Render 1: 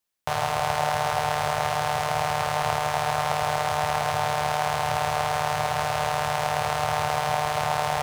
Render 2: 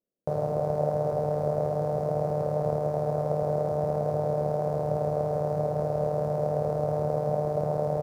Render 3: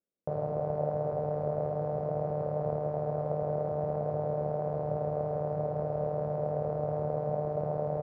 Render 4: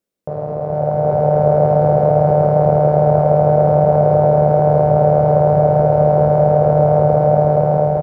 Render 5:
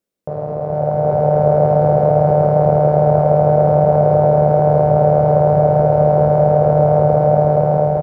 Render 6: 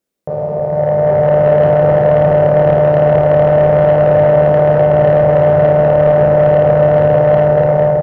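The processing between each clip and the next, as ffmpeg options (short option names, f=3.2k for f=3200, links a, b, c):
-af "firequalizer=gain_entry='entry(110,0);entry(160,12);entry(560,12);entry(820,-9);entry(1900,-22);entry(3000,-28);entry(4800,-18);entry(8300,-19);entry(13000,-15)':delay=0.05:min_phase=1,volume=-5dB"
-af "lowpass=2.3k,volume=-4.5dB"
-filter_complex "[0:a]asplit=2[a][b];[b]alimiter=level_in=3dB:limit=-24dB:level=0:latency=1,volume=-3dB,volume=2dB[c];[a][c]amix=inputs=2:normalize=0,aecho=1:1:452:0.631,dynaudnorm=f=300:g=7:m=10dB,volume=3dB"
-af anull
-filter_complex "[0:a]bandreject=f=60:t=h:w=6,bandreject=f=120:t=h:w=6,bandreject=f=180:t=h:w=6,bandreject=f=240:t=h:w=6,bandreject=f=300:t=h:w=6,asoftclip=type=tanh:threshold=-9dB,asplit=2[a][b];[b]aecho=0:1:30|53:0.501|0.447[c];[a][c]amix=inputs=2:normalize=0,volume=3dB"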